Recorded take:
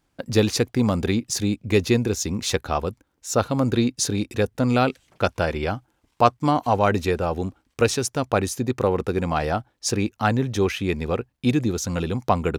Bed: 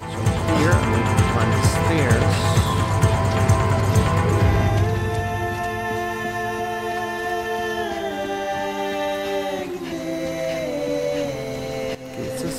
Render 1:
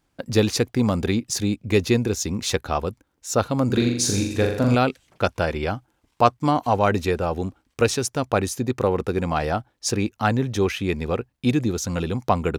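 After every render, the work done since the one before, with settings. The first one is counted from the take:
0:03.66–0:04.75: flutter between parallel walls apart 7.1 metres, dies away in 0.7 s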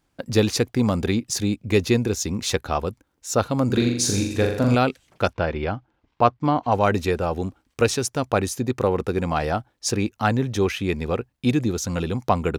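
0:05.33–0:06.72: high-frequency loss of the air 190 metres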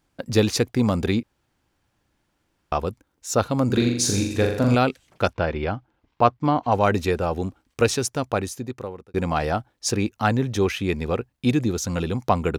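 0:01.23–0:02.72: fill with room tone
0:08.05–0:09.14: fade out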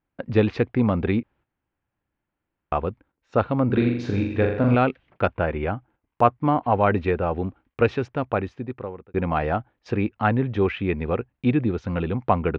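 low-pass filter 2,700 Hz 24 dB per octave
noise gate −52 dBFS, range −11 dB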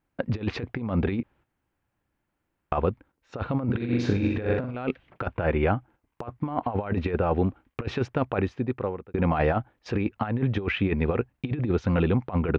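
compressor whose output falls as the input rises −24 dBFS, ratio −0.5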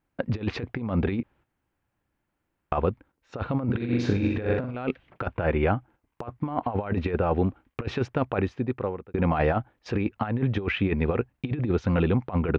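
no processing that can be heard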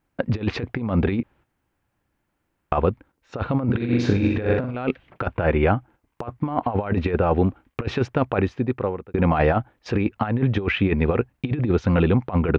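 level +4.5 dB

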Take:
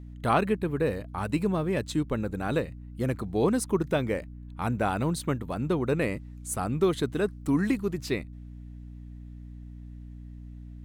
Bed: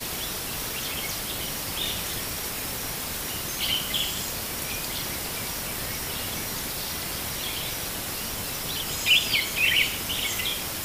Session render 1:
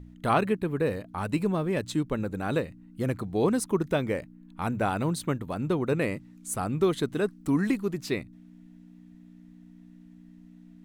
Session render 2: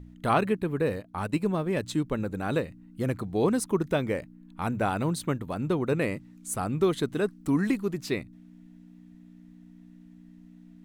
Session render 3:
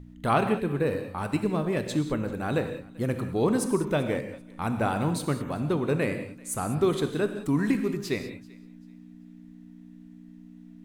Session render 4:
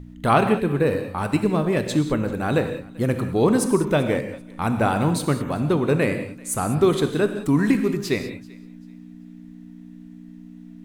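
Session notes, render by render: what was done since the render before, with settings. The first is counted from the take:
hum removal 60 Hz, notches 2
0:00.95–0:01.73: transient designer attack 0 dB, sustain −7 dB
feedback echo with a high-pass in the loop 388 ms, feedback 27%, high-pass 650 Hz, level −23.5 dB; reverb whose tail is shaped and stops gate 220 ms flat, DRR 7 dB
level +6 dB

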